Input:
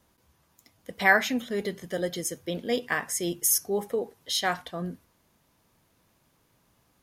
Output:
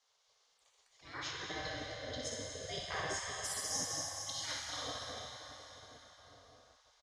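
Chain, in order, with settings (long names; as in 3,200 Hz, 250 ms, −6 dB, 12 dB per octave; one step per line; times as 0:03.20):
low-pass filter 5,900 Hz 24 dB per octave
hollow resonant body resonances 360/610/1,100/2,100 Hz, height 10 dB, ringing for 50 ms
0:00.93–0:03.19: spectral tilt −2.5 dB per octave
high-pass filter 74 Hz 12 dB per octave
flat-topped bell 1,100 Hz −14 dB 2.9 octaves
repeating echo 61 ms, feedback 36%, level −5.5 dB
volume swells 352 ms
dense smooth reverb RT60 4.9 s, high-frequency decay 0.8×, DRR −2.5 dB
gate on every frequency bin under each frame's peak −20 dB weak
level +2 dB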